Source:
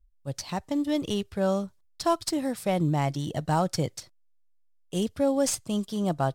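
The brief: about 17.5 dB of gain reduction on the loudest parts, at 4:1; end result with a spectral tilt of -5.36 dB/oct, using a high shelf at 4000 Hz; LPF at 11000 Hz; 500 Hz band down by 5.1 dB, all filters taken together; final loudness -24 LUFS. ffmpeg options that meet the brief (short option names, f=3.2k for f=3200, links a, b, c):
-af "lowpass=11k,equalizer=f=500:t=o:g=-6.5,highshelf=f=4k:g=-5.5,acompressor=threshold=-45dB:ratio=4,volume=22dB"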